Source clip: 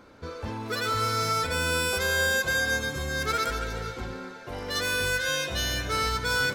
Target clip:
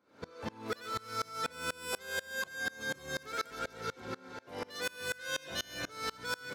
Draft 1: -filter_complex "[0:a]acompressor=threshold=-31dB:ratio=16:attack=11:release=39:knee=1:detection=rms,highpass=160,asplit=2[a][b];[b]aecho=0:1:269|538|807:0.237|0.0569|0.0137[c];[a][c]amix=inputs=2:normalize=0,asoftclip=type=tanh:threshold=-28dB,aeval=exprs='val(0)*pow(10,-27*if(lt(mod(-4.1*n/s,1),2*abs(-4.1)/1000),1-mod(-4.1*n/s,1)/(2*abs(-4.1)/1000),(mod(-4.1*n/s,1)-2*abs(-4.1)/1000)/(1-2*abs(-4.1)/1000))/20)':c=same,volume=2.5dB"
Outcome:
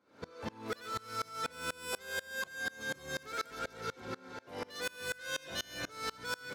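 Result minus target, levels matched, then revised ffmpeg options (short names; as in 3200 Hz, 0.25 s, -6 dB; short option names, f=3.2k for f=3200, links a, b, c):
soft clip: distortion +13 dB
-filter_complex "[0:a]acompressor=threshold=-31dB:ratio=16:attack=11:release=39:knee=1:detection=rms,highpass=160,asplit=2[a][b];[b]aecho=0:1:269|538|807:0.237|0.0569|0.0137[c];[a][c]amix=inputs=2:normalize=0,asoftclip=type=tanh:threshold=-20dB,aeval=exprs='val(0)*pow(10,-27*if(lt(mod(-4.1*n/s,1),2*abs(-4.1)/1000),1-mod(-4.1*n/s,1)/(2*abs(-4.1)/1000),(mod(-4.1*n/s,1)-2*abs(-4.1)/1000)/(1-2*abs(-4.1)/1000))/20)':c=same,volume=2.5dB"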